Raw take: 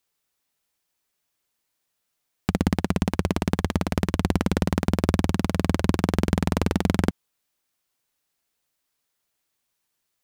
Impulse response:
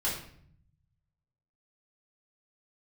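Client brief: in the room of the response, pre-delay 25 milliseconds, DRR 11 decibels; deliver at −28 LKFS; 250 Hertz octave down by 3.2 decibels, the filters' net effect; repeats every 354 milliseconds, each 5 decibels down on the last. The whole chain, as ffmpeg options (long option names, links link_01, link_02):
-filter_complex "[0:a]equalizer=frequency=250:width_type=o:gain=-4.5,aecho=1:1:354|708|1062|1416|1770|2124|2478:0.562|0.315|0.176|0.0988|0.0553|0.031|0.0173,asplit=2[link_01][link_02];[1:a]atrim=start_sample=2205,adelay=25[link_03];[link_02][link_03]afir=irnorm=-1:irlink=0,volume=-18dB[link_04];[link_01][link_04]amix=inputs=2:normalize=0,volume=-3dB"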